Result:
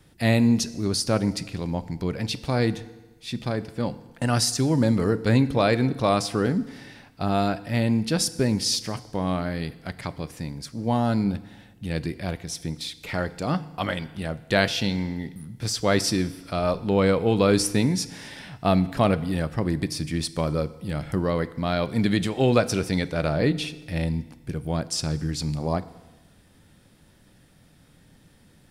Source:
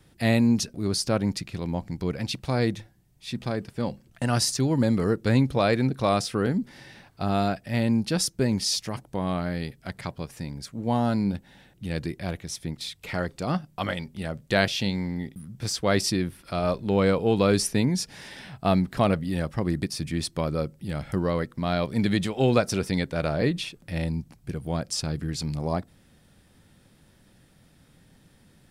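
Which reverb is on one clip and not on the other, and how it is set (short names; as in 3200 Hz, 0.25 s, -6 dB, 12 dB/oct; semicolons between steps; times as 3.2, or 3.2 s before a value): FDN reverb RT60 1.2 s, low-frequency decay 1×, high-frequency decay 0.95×, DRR 14 dB; gain +1.5 dB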